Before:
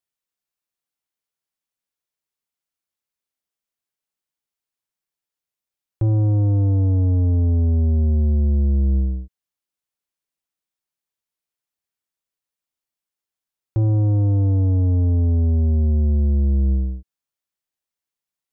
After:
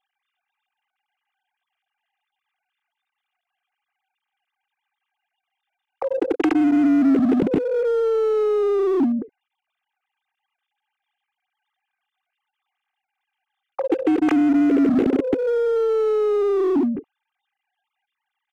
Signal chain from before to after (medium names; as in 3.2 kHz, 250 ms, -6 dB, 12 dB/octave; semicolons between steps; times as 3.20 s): formants replaced by sine waves; comb 2.5 ms, depth 64%; in parallel at -5 dB: wavefolder -21.5 dBFS; on the sum: compression 3:1, threshold -18 dBFS, peak gain reduction 6.5 dB; dynamic bell 270 Hz, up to +4 dB, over -32 dBFS, Q 7.2